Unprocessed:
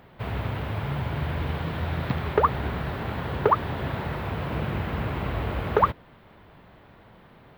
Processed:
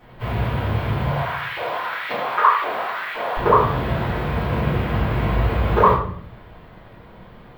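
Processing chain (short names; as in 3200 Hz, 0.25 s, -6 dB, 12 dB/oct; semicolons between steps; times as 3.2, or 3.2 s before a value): 1.04–3.37 LFO high-pass saw up 1.9 Hz 500–2300 Hz; shoebox room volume 94 m³, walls mixed, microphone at 3.6 m; gain -6.5 dB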